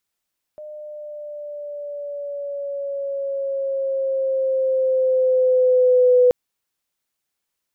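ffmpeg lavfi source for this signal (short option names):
-f lavfi -i "aevalsrc='pow(10,(-10+23*(t/5.73-1))/20)*sin(2*PI*607*5.73/(-3.5*log(2)/12)*(exp(-3.5*log(2)/12*t/5.73)-1))':d=5.73:s=44100"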